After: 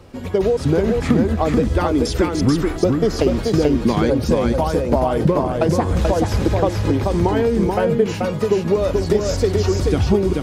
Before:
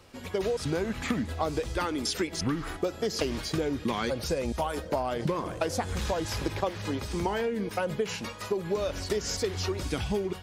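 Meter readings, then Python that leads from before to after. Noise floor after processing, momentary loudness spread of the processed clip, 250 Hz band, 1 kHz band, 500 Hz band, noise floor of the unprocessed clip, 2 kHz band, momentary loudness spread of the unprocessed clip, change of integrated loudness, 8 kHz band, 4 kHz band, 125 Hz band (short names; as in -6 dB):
-27 dBFS, 2 LU, +14.5 dB, +10.0 dB, +13.0 dB, -42 dBFS, +6.0 dB, 3 LU, +12.5 dB, +4.0 dB, +4.0 dB, +15.5 dB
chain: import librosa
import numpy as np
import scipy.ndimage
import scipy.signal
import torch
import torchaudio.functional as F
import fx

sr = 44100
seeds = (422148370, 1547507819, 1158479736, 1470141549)

p1 = fx.tilt_shelf(x, sr, db=6.0, hz=930.0)
p2 = p1 + fx.echo_single(p1, sr, ms=434, db=-3.5, dry=0)
y = F.gain(torch.from_numpy(p2), 8.0).numpy()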